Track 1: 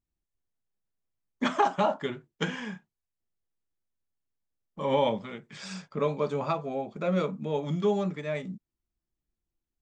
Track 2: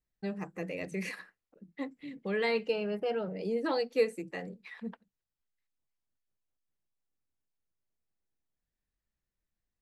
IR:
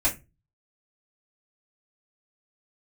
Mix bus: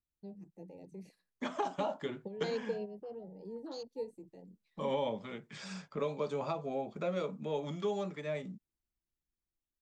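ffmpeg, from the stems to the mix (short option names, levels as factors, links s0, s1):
-filter_complex "[0:a]dynaudnorm=f=270:g=11:m=2,volume=0.376,asplit=2[s0][s1];[1:a]firequalizer=gain_entry='entry(320,0);entry(1300,-11);entry(4200,7)':delay=0.05:min_phase=1,afwtdn=0.0141,volume=0.891[s2];[s1]apad=whole_len=437238[s3];[s2][s3]sidechaingate=range=0.316:threshold=0.00251:ratio=16:detection=peak[s4];[s0][s4]amix=inputs=2:normalize=0,acrossover=split=350|900|2400[s5][s6][s7][s8];[s5]acompressor=threshold=0.00708:ratio=4[s9];[s6]acompressor=threshold=0.0224:ratio=4[s10];[s7]acompressor=threshold=0.00316:ratio=4[s11];[s8]acompressor=threshold=0.00355:ratio=4[s12];[s9][s10][s11][s12]amix=inputs=4:normalize=0"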